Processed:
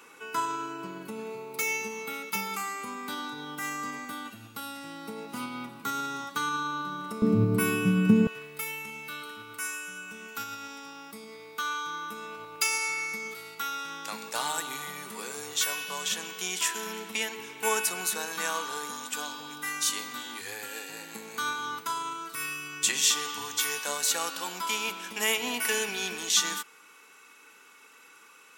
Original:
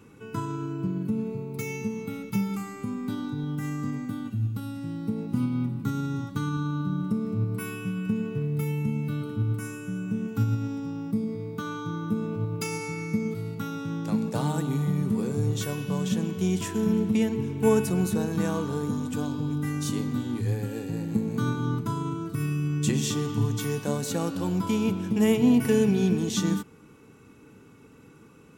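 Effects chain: HPF 820 Hz 12 dB/oct, from 7.22 s 170 Hz, from 8.27 s 1300 Hz; gain +9 dB

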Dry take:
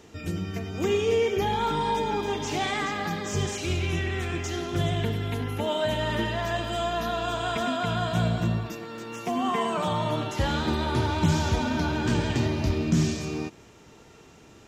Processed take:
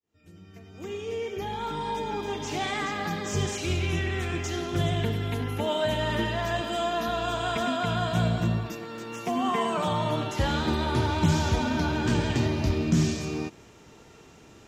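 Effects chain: opening faded in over 3.33 s; 6.61–7.08 resonant low shelf 170 Hz -8.5 dB, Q 1.5

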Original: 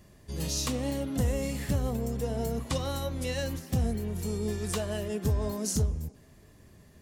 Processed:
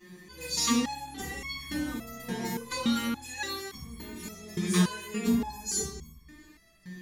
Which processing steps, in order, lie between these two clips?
fifteen-band EQ 100 Hz -11 dB, 630 Hz -8 dB, 6300 Hz -4 dB; soft clip -23 dBFS, distortion -21 dB; reverb RT60 0.65 s, pre-delay 3 ms, DRR -8.5 dB; stepped resonator 3.5 Hz 180–1100 Hz; gain +8.5 dB

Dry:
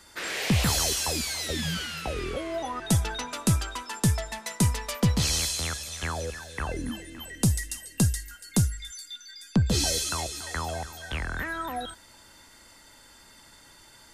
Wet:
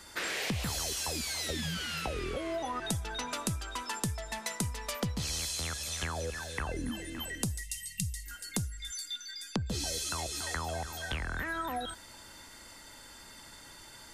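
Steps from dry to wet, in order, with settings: compressor 6:1, threshold -34 dBFS, peak gain reduction 15.5 dB; spectral delete 7.62–8.26, 210–1800 Hz; gain +2 dB

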